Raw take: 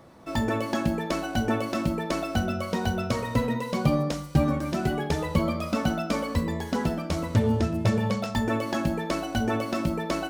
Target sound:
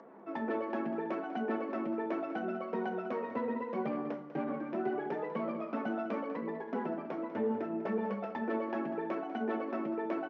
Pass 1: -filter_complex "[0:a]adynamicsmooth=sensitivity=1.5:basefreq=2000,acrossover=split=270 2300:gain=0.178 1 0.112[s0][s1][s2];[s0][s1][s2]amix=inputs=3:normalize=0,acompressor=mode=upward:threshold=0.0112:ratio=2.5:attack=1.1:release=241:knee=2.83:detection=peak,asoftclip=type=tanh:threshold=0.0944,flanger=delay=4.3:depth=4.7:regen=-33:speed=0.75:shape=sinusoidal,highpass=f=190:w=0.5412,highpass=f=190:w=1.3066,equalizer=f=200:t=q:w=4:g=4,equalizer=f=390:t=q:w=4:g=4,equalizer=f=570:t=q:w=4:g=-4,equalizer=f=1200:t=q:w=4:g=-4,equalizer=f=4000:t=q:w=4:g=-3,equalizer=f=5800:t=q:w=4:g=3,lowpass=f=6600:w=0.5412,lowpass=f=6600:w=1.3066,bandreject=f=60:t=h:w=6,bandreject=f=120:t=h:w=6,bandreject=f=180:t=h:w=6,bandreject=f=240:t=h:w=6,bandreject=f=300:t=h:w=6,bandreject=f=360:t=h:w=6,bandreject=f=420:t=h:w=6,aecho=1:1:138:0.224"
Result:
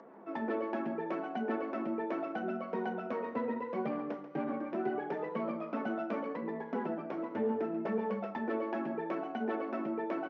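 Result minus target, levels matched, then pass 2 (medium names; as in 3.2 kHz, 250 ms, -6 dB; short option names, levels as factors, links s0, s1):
echo 58 ms early
-filter_complex "[0:a]adynamicsmooth=sensitivity=1.5:basefreq=2000,acrossover=split=270 2300:gain=0.178 1 0.112[s0][s1][s2];[s0][s1][s2]amix=inputs=3:normalize=0,acompressor=mode=upward:threshold=0.0112:ratio=2.5:attack=1.1:release=241:knee=2.83:detection=peak,asoftclip=type=tanh:threshold=0.0944,flanger=delay=4.3:depth=4.7:regen=-33:speed=0.75:shape=sinusoidal,highpass=f=190:w=0.5412,highpass=f=190:w=1.3066,equalizer=f=200:t=q:w=4:g=4,equalizer=f=390:t=q:w=4:g=4,equalizer=f=570:t=q:w=4:g=-4,equalizer=f=1200:t=q:w=4:g=-4,equalizer=f=4000:t=q:w=4:g=-3,equalizer=f=5800:t=q:w=4:g=3,lowpass=f=6600:w=0.5412,lowpass=f=6600:w=1.3066,bandreject=f=60:t=h:w=6,bandreject=f=120:t=h:w=6,bandreject=f=180:t=h:w=6,bandreject=f=240:t=h:w=6,bandreject=f=300:t=h:w=6,bandreject=f=360:t=h:w=6,bandreject=f=420:t=h:w=6,aecho=1:1:196:0.224"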